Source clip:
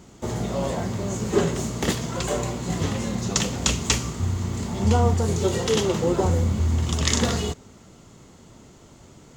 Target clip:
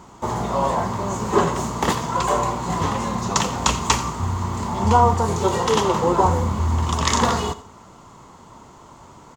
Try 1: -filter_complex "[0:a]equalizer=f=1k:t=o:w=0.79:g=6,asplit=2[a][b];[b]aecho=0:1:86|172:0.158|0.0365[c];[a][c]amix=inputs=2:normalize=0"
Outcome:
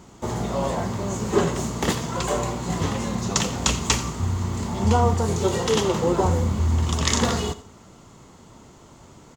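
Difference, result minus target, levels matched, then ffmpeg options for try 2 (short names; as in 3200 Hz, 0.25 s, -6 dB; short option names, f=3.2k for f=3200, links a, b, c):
1000 Hz band -5.5 dB
-filter_complex "[0:a]equalizer=f=1k:t=o:w=0.79:g=16.5,asplit=2[a][b];[b]aecho=0:1:86|172:0.158|0.0365[c];[a][c]amix=inputs=2:normalize=0"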